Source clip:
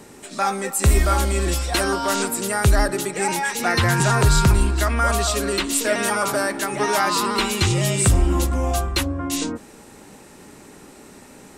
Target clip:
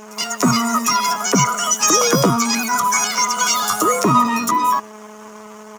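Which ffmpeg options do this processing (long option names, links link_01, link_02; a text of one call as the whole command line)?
ffmpeg -i in.wav -filter_complex "[0:a]superequalizer=6b=3.16:11b=2.82:14b=0.447,acrossover=split=730|5800[link_01][link_02][link_03];[link_01]adelay=40[link_04];[link_03]adelay=130[link_05];[link_04][link_02][link_05]amix=inputs=3:normalize=0,aeval=exprs='val(0)+0.0224*(sin(2*PI*60*n/s)+sin(2*PI*2*60*n/s)/2+sin(2*PI*3*60*n/s)/3+sin(2*PI*4*60*n/s)/4+sin(2*PI*5*60*n/s)/5)':channel_layout=same,aeval=exprs='sgn(val(0))*max(abs(val(0))-0.0133,0)':channel_layout=same,asetrate=78577,aresample=44100,atempo=0.561231,equalizer=frequency=2000:width=3:gain=-5.5,asetrate=88200,aresample=44100,highpass=frequency=190:poles=1,bandreject=frequency=790:width=19,volume=2.5dB" out.wav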